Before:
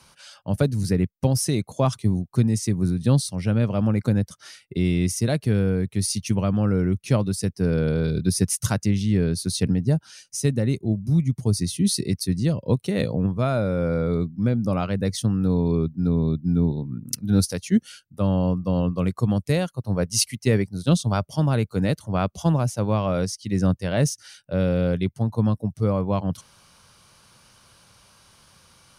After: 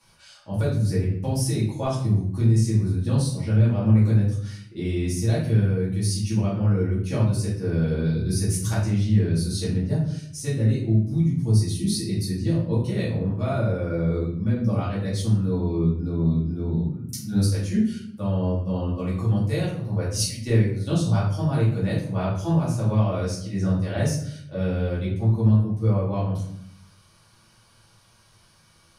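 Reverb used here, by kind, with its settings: simulated room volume 110 m³, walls mixed, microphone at 2.4 m; trim -12.5 dB

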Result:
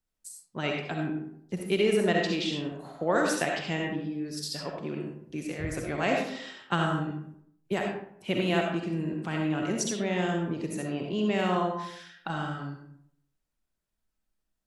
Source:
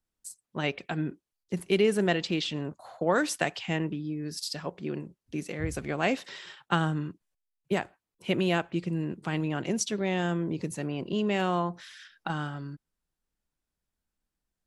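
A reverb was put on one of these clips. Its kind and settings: algorithmic reverb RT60 0.69 s, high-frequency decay 0.55×, pre-delay 25 ms, DRR 0.5 dB; trim -2 dB

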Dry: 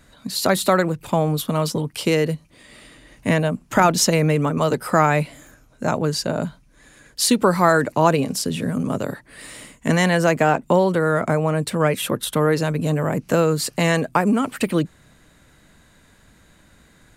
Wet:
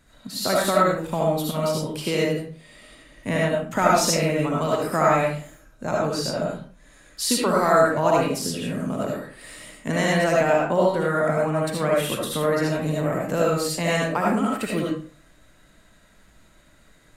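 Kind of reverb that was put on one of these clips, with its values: algorithmic reverb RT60 0.44 s, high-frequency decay 0.7×, pre-delay 35 ms, DRR -4 dB; trim -7.5 dB

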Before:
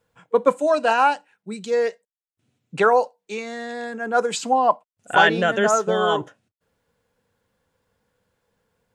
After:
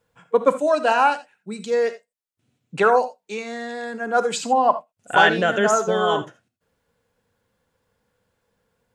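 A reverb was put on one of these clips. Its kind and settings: gated-style reverb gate 100 ms rising, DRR 11.5 dB

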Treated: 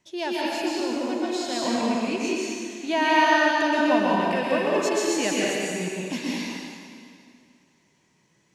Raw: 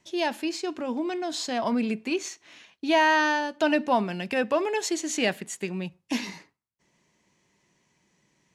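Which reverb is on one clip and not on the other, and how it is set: plate-style reverb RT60 2.2 s, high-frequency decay 0.95×, pre-delay 110 ms, DRR -5.5 dB; trim -3.5 dB

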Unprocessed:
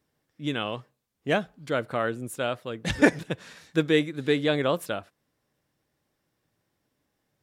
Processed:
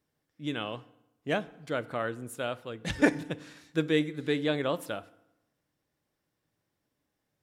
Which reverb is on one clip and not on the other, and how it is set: FDN reverb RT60 0.9 s, low-frequency decay 1.1×, high-frequency decay 0.75×, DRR 16 dB; trim -5 dB

